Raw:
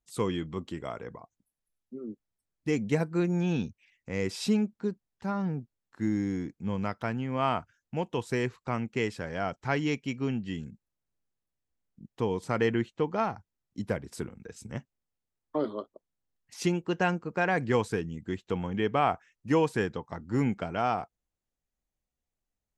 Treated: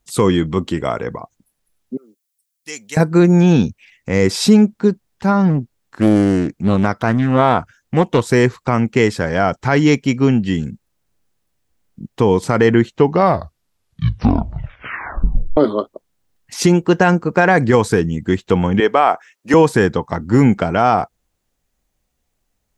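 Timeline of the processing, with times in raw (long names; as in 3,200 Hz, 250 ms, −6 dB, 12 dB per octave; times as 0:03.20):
0:01.97–0:02.97: first difference
0:05.50–0:08.24: highs frequency-modulated by the lows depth 0.51 ms
0:12.88: tape stop 2.69 s
0:18.80–0:19.54: high-pass filter 400 Hz
whole clip: dynamic equaliser 2,700 Hz, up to −6 dB, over −51 dBFS, Q 2.7; boost into a limiter +18 dB; level −1 dB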